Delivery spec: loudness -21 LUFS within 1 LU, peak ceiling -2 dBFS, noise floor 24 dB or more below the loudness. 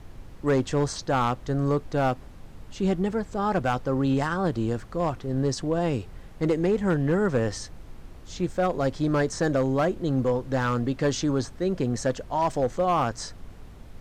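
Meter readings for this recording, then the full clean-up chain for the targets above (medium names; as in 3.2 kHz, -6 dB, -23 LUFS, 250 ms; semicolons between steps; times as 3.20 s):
clipped samples 0.9%; clipping level -16.5 dBFS; noise floor -45 dBFS; noise floor target -50 dBFS; loudness -26.0 LUFS; peak level -16.5 dBFS; loudness target -21.0 LUFS
-> clip repair -16.5 dBFS; noise print and reduce 6 dB; trim +5 dB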